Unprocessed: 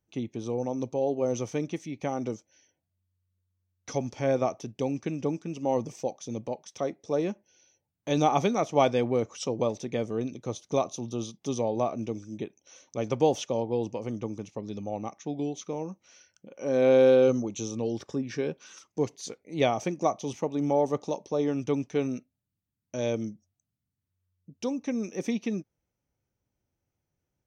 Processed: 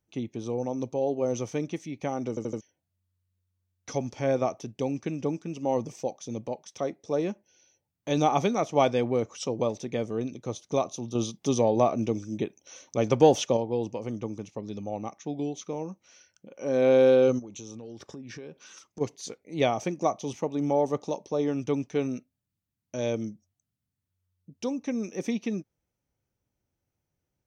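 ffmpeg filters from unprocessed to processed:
-filter_complex "[0:a]asettb=1/sr,asplit=3[s0][s1][s2];[s0]atrim=end=11.154[s3];[s1]atrim=start=11.15:end=13.57,asetpts=PTS-STARTPTS,afade=t=in:d=0.004:c=qsin,afade=t=out:st=2.416:d=0.004:c=qsin,acontrast=32[s4];[s2]atrim=start=13.566[s5];[s3][s4]acrossfade=d=0.004:c1=hsin:c2=qsin[s6];[s6][s5]acrossfade=d=0.004:c1=qsin:c2=hsin,asplit=3[s7][s8][s9];[s7]afade=t=out:st=17.38:d=0.02[s10];[s8]acompressor=threshold=0.0126:ratio=8:attack=3.2:release=140:knee=1:detection=peak,afade=t=in:st=17.38:d=0.02,afade=t=out:st=19:d=0.02[s11];[s9]afade=t=in:st=19:d=0.02[s12];[s10][s11][s12]amix=inputs=3:normalize=0,asplit=5[s13][s14][s15][s16][s17];[s13]atrim=end=2.372[s18];[s14]atrim=start=2.288:end=2.372[s19];[s15]atrim=start=2.288:end=2.372[s20];[s16]atrim=start=2.288:end=2.372[s21];[s17]atrim=start=2.608[s22];[s18][s19]acrossfade=d=0.004:c1=hsin:c2=hsin[s23];[s23][s20]acrossfade=d=0.004:c1=hsin:c2=hsin[s24];[s24][s21]acrossfade=d=0.004:c1=hsin:c2=hsin[s25];[s25][s22]acrossfade=d=0.004:c1=hsin:c2=hsin"

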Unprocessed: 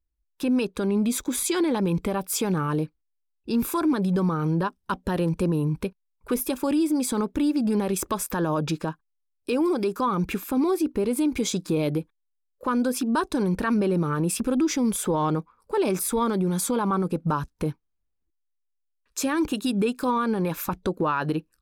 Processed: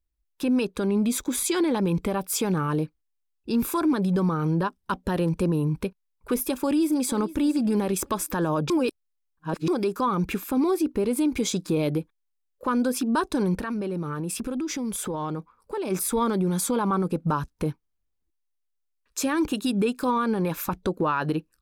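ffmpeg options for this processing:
-filter_complex "[0:a]asplit=2[s0][s1];[s1]afade=t=in:st=6.36:d=0.01,afade=t=out:st=7.13:d=0.01,aecho=0:1:460|920|1380:0.133352|0.0533409|0.0213363[s2];[s0][s2]amix=inputs=2:normalize=0,asplit=3[s3][s4][s5];[s3]afade=t=out:st=13.55:d=0.02[s6];[s4]acompressor=threshold=0.0447:ratio=4:attack=3.2:release=140:knee=1:detection=peak,afade=t=in:st=13.55:d=0.02,afade=t=out:st=15.9:d=0.02[s7];[s5]afade=t=in:st=15.9:d=0.02[s8];[s6][s7][s8]amix=inputs=3:normalize=0,asplit=3[s9][s10][s11];[s9]atrim=end=8.702[s12];[s10]atrim=start=8.698:end=9.682,asetpts=PTS-STARTPTS,areverse[s13];[s11]atrim=start=9.678[s14];[s12][s13]acrossfade=d=0.004:c1=hsin:c2=hsin[s15];[s15][s14]acrossfade=d=0.004:c1=hsin:c2=hsin"

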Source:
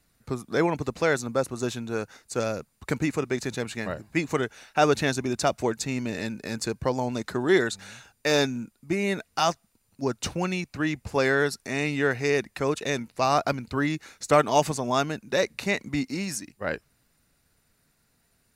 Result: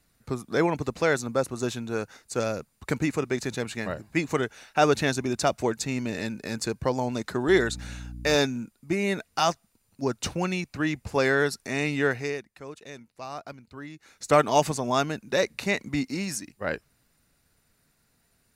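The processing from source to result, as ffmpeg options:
-filter_complex "[0:a]asettb=1/sr,asplit=3[s0][s1][s2];[s0]atrim=end=7.484[s3];[s1]atrim=start=7.48:end=8.36,asetpts=PTS-STARTPTS,afade=t=in:d=0.004:c=qsin,afade=t=out:st=0.876:d=0.004:c=qsin,aeval=exprs='val(0)+0.0141*(sin(2*PI*60*n/s)+sin(2*PI*2*60*n/s)/2+sin(2*PI*3*60*n/s)/3+sin(2*PI*4*60*n/s)/4+sin(2*PI*5*60*n/s)/5)':c=same[s4];[s2]atrim=start=8.356[s5];[s3][s4]acrossfade=d=0.004:c1=hsin:c2=qsin[s6];[s6][s5]acrossfade=d=0.004:c1=qsin:c2=hsin,asplit=3[s7][s8][s9];[s7]atrim=end=12.43,asetpts=PTS-STARTPTS,afade=t=out:st=12.07:d=0.36:silence=0.177828[s10];[s8]atrim=start=12.43:end=13.98,asetpts=PTS-STARTPTS,volume=0.178[s11];[s9]atrim=start=13.98,asetpts=PTS-STARTPTS,afade=t=in:d=0.36:silence=0.177828[s12];[s10][s11][s12]concat=n=3:v=0:a=1"

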